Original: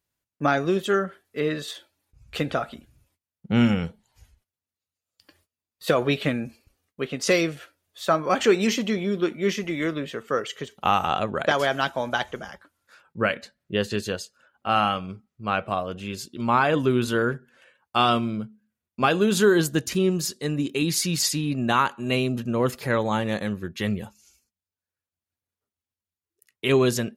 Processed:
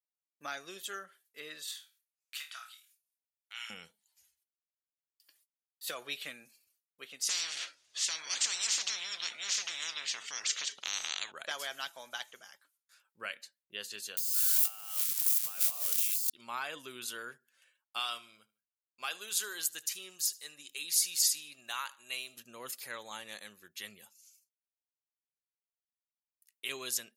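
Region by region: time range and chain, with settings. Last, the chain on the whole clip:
1.65–3.7 HPF 1100 Hz 24 dB/oct + flutter echo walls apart 4.5 m, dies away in 0.26 s + three-band squash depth 40%
7.29–11.32 LPF 6200 Hz 24 dB/oct + spectral compressor 10:1
14.17–16.3 switching spikes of -17.5 dBFS + negative-ratio compressor -31 dBFS
17.99–22.37 bell 200 Hz -11 dB 2.2 oct + feedback echo 75 ms, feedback 35%, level -21 dB
whole clip: gate with hold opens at -53 dBFS; differentiator; gain -2 dB

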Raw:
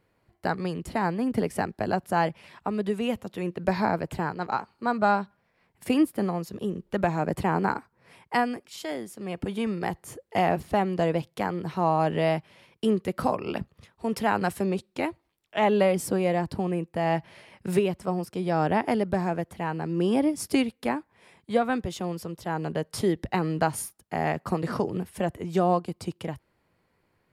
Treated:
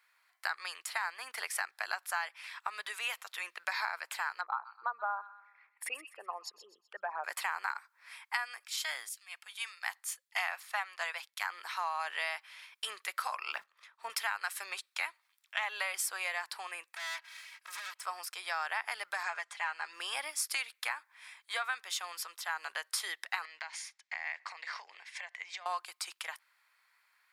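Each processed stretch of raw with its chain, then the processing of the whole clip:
4.41–7.24 formant sharpening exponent 2 + treble ducked by the level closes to 1400 Hz, closed at -19.5 dBFS + thin delay 0.126 s, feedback 39%, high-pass 1900 Hz, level -12 dB
9.09–11.5 HPF 620 Hz + three-band expander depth 100%
13.52–14.1 block floating point 7-bit + tilt -3.5 dB/oct + notch 770 Hz, Q 15
16.95–18.01 minimum comb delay 3.1 ms + tube stage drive 35 dB, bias 0.35 + low shelf 470 Hz -10 dB
19.23–19.93 LPF 8500 Hz 24 dB/oct + comb 4.9 ms, depth 51%
23.45–25.66 compressor 12:1, threshold -32 dBFS + speaker cabinet 300–6300 Hz, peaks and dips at 380 Hz -4 dB, 1300 Hz -10 dB, 2100 Hz +9 dB
whole clip: HPF 1200 Hz 24 dB/oct; notch 2900 Hz, Q 16; compressor 6:1, threshold -37 dBFS; gain +6 dB

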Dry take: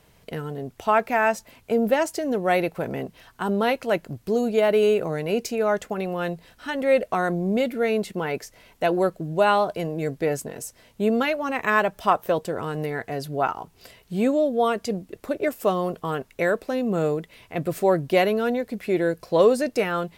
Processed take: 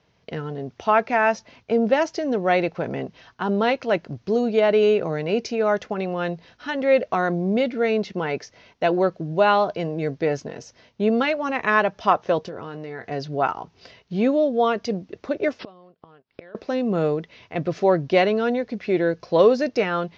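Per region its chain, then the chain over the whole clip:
12.43–13.11 doubler 23 ms -11.5 dB + compressor 5:1, threshold -31 dBFS
15.59–16.55 flipped gate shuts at -23 dBFS, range -26 dB + careless resampling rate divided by 4×, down none, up filtered
whole clip: HPF 70 Hz; gate -53 dBFS, range -7 dB; steep low-pass 6200 Hz 72 dB/oct; gain +1.5 dB

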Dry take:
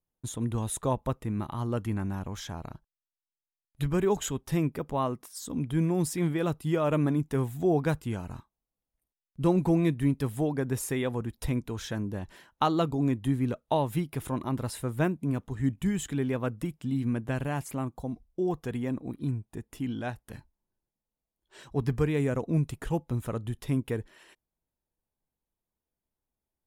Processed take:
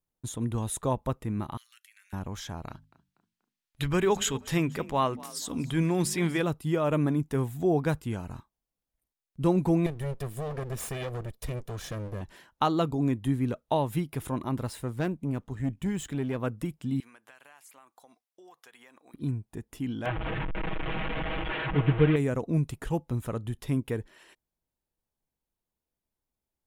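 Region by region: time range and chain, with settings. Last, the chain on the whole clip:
1.57–2.13 steep high-pass 1900 Hz + bell 12000 Hz +4 dB 0.35 oct + compressor 5:1, threshold -53 dBFS
2.68–6.42 bell 2900 Hz +8.5 dB 2.9 oct + notches 50/100/150/200/250 Hz + frequency-shifting echo 0.241 s, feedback 34%, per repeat +35 Hz, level -20 dB
9.86–12.21 minimum comb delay 1.7 ms + compressor 2.5:1, threshold -31 dBFS
14.67–16.39 median filter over 3 samples + tube stage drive 22 dB, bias 0.4
17–19.14 HPF 1100 Hz + compressor, threshold -50 dBFS
20.05–22.16 delta modulation 16 kbps, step -27.5 dBFS + comb 6.3 ms, depth 91%
whole clip: dry

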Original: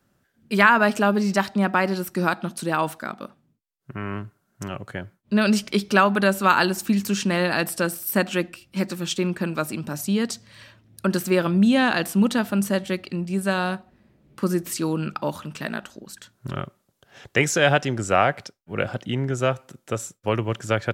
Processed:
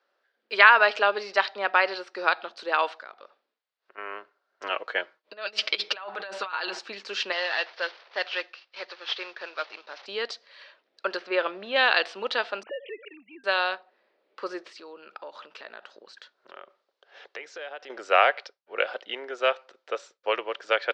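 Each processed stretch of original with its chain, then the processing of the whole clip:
3.02–3.98 compressor 2:1, threshold -45 dBFS + high shelf 3400 Hz +7.5 dB + decimation joined by straight lines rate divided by 3×
4.63–6.79 negative-ratio compressor -25 dBFS, ratio -0.5 + comb 6.3 ms, depth 50%
7.32–10.06 CVSD 32 kbps + HPF 930 Hz 6 dB/oct
11.16–11.76 G.711 law mismatch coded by mu + air absorption 220 m
12.63–13.44 sine-wave speech + compressor 4:1, threshold -31 dBFS
14.67–17.9 compressor 4:1, threshold -35 dBFS + bell 160 Hz +6.5 dB 1.4 oct
whole clip: elliptic band-pass 460–4600 Hz, stop band 50 dB; dynamic EQ 3000 Hz, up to +7 dB, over -37 dBFS, Q 0.82; gain -1.5 dB

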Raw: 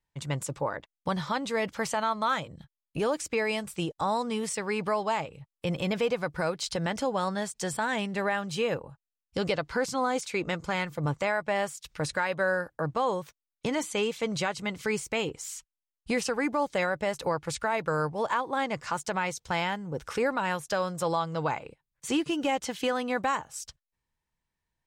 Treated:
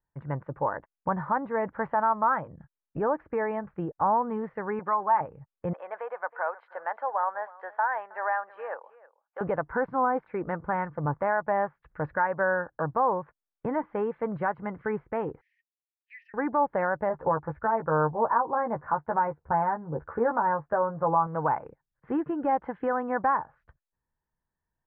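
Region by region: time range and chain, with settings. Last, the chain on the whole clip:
4.79–5.21 HPF 620 Hz 6 dB/oct + comb 5.6 ms, depth 55%
5.73–9.41 HPF 620 Hz 24 dB/oct + echo 0.319 s -19 dB
15.41–16.34 rippled Chebyshev high-pass 1800 Hz, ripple 6 dB + high shelf 3000 Hz +10 dB
17.09–21.27 LPF 1400 Hz + doubler 13 ms -5 dB
whole clip: elliptic low-pass 1700 Hz, stop band 80 dB; dynamic EQ 920 Hz, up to +7 dB, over -44 dBFS, Q 2.2

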